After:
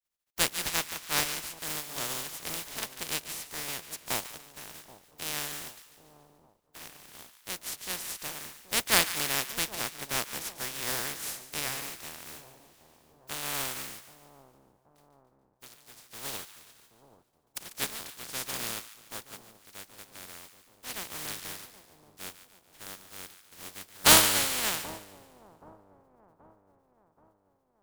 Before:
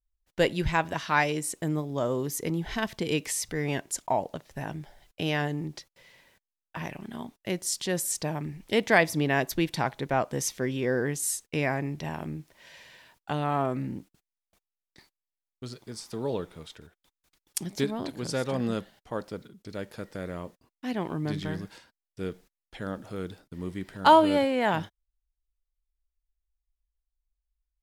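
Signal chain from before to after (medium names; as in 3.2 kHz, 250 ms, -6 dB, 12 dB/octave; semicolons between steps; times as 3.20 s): spectral contrast reduction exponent 0.16; two-band feedback delay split 1 kHz, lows 778 ms, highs 144 ms, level -9 dB; upward expansion 1.5:1, over -39 dBFS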